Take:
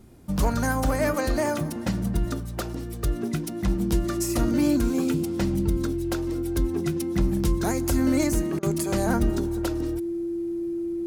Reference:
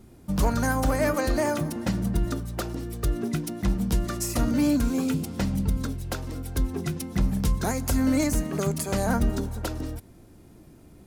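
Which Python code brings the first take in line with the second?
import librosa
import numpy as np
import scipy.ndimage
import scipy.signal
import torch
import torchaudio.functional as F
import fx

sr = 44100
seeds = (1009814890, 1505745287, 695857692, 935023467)

y = fx.notch(x, sr, hz=340.0, q=30.0)
y = fx.fix_interpolate(y, sr, at_s=(8.59,), length_ms=38.0)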